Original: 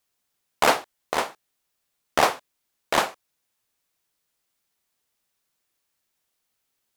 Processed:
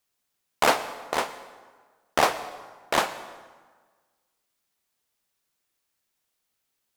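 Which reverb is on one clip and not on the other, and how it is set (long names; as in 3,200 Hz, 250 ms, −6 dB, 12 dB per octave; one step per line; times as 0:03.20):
dense smooth reverb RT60 1.5 s, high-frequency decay 0.7×, pre-delay 90 ms, DRR 14 dB
level −1.5 dB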